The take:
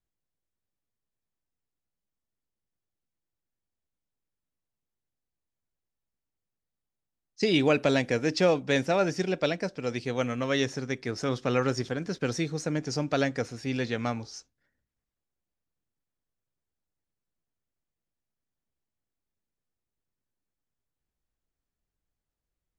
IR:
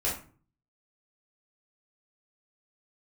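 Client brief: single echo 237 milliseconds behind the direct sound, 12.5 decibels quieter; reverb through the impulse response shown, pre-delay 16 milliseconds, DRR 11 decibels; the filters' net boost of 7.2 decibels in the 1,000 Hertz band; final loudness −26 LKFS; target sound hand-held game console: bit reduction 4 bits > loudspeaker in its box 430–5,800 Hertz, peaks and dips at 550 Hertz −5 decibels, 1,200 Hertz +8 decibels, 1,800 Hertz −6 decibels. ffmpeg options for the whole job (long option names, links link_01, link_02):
-filter_complex "[0:a]equalizer=frequency=1000:width_type=o:gain=6.5,aecho=1:1:237:0.237,asplit=2[link_01][link_02];[1:a]atrim=start_sample=2205,adelay=16[link_03];[link_02][link_03]afir=irnorm=-1:irlink=0,volume=-18.5dB[link_04];[link_01][link_04]amix=inputs=2:normalize=0,acrusher=bits=3:mix=0:aa=0.000001,highpass=430,equalizer=frequency=550:width_type=q:width=4:gain=-5,equalizer=frequency=1200:width_type=q:width=4:gain=8,equalizer=frequency=1800:width_type=q:width=4:gain=-6,lowpass=frequency=5800:width=0.5412,lowpass=frequency=5800:width=1.3066,volume=1dB"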